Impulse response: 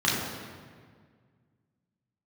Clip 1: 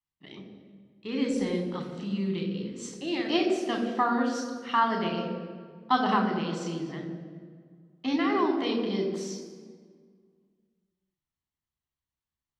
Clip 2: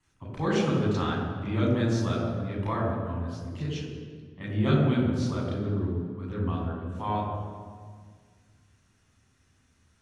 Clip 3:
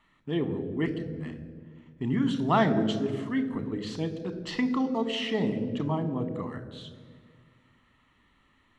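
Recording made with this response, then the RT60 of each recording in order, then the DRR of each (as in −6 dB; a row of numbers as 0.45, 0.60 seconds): 2; 1.8, 1.8, 1.8 seconds; 2.5, −6.5, 10.0 decibels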